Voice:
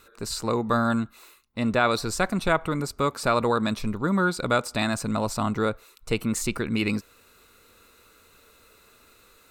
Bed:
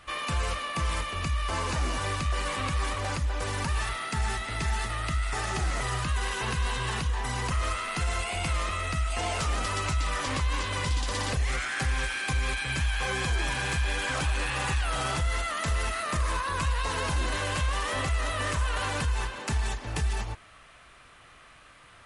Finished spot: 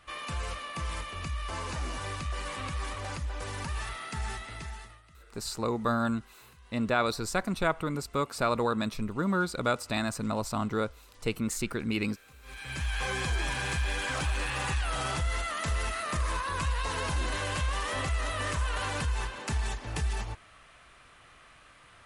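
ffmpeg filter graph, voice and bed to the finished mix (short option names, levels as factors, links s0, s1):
-filter_complex "[0:a]adelay=5150,volume=0.562[s0];[1:a]volume=9.44,afade=t=out:st=4.3:d=0.72:silence=0.0794328,afade=t=in:st=12.42:d=0.57:silence=0.0530884[s1];[s0][s1]amix=inputs=2:normalize=0"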